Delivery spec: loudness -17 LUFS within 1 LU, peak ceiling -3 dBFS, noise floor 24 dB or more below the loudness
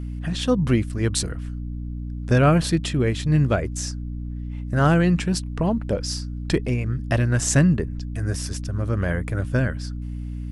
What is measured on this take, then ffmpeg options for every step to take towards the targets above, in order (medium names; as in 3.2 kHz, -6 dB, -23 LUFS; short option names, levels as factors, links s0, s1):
hum 60 Hz; highest harmonic 300 Hz; hum level -28 dBFS; loudness -23.5 LUFS; peak level -5.5 dBFS; loudness target -17.0 LUFS
-> -af "bandreject=f=60:t=h:w=4,bandreject=f=120:t=h:w=4,bandreject=f=180:t=h:w=4,bandreject=f=240:t=h:w=4,bandreject=f=300:t=h:w=4"
-af "volume=2.11,alimiter=limit=0.708:level=0:latency=1"